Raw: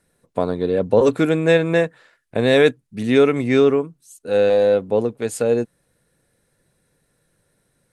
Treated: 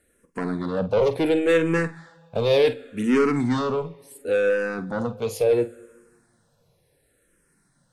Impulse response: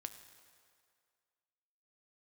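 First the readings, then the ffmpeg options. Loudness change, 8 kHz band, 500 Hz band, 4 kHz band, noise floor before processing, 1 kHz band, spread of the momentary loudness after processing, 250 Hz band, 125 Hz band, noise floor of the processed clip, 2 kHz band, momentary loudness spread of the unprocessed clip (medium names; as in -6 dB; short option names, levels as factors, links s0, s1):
-5.0 dB, -5.5 dB, -5.0 dB, -5.0 dB, -68 dBFS, -2.5 dB, 11 LU, -4.0 dB, -4.5 dB, -66 dBFS, -4.0 dB, 12 LU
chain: -filter_complex "[0:a]bandreject=f=3800:w=27,asoftclip=type=tanh:threshold=0.15,asplit=2[s0][s1];[1:a]atrim=start_sample=2205,adelay=48[s2];[s1][s2]afir=irnorm=-1:irlink=0,volume=0.398[s3];[s0][s3]amix=inputs=2:normalize=0,asplit=2[s4][s5];[s5]afreqshift=-0.7[s6];[s4][s6]amix=inputs=2:normalize=1,volume=1.41"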